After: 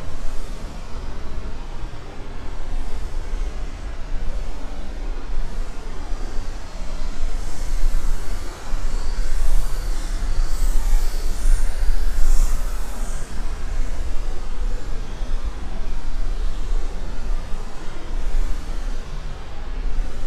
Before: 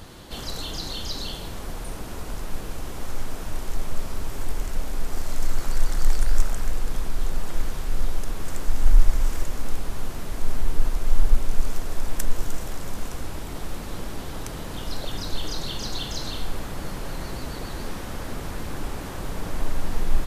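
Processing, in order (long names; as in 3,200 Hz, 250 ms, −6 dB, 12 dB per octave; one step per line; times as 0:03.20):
low-pass that shuts in the quiet parts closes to 2,700 Hz, open at −9 dBFS
extreme stretch with random phases 5×, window 0.10 s, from 0:03.92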